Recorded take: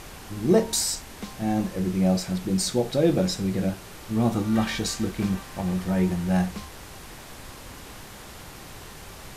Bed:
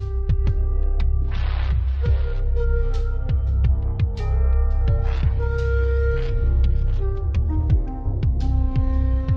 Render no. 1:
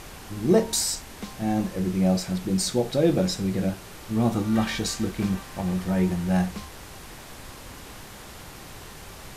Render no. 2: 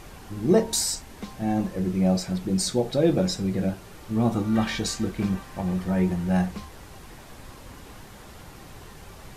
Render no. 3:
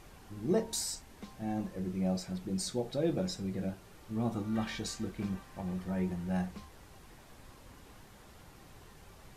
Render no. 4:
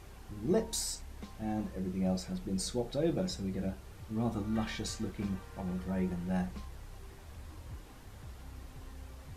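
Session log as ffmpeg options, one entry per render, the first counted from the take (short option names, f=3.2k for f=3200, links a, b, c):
-af anull
-af "afftdn=nr=6:nf=-43"
-af "volume=-10.5dB"
-filter_complex "[1:a]volume=-29dB[a];[0:a][a]amix=inputs=2:normalize=0"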